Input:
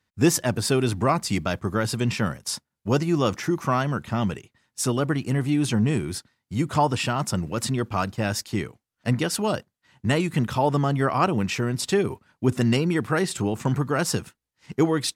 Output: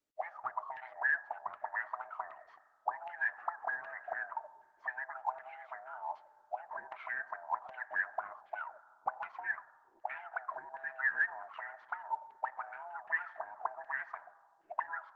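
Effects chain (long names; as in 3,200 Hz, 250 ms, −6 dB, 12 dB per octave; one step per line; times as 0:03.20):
neighbouring bands swapped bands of 500 Hz
Butterworth low-pass 7,400 Hz 96 dB per octave
downward compressor 10 to 1, threshold −26 dBFS, peak gain reduction 13.5 dB
envelope filter 300–1,800 Hz, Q 12, up, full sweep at −25 dBFS
convolution reverb RT60 1.9 s, pre-delay 3 ms, DRR 16 dB
auto-filter low-pass saw down 1.3 Hz 890–2,700 Hz
level +3 dB
Opus 12 kbit/s 48,000 Hz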